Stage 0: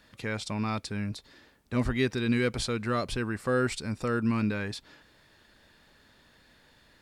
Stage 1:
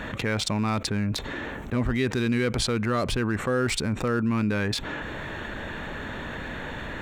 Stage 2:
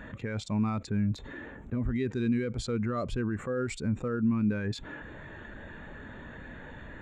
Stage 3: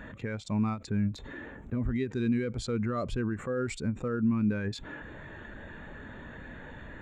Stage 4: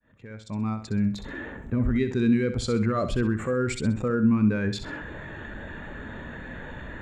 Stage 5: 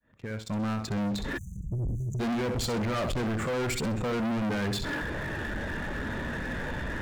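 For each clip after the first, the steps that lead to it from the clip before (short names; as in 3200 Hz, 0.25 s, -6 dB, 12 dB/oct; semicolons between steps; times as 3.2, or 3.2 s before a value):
Wiener smoothing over 9 samples; fast leveller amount 70%
bell 7100 Hz +7.5 dB 0.28 oct; limiter -18.5 dBFS, peak gain reduction 6.5 dB; spectral expander 1.5:1
ending taper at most 220 dB/s
opening faded in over 1.38 s; on a send: flutter echo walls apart 11 m, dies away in 0.38 s; on the sum: gain +6 dB
sample leveller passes 2; spectral delete 1.37–2.2, 200–5900 Hz; soft clip -27.5 dBFS, distortion -6 dB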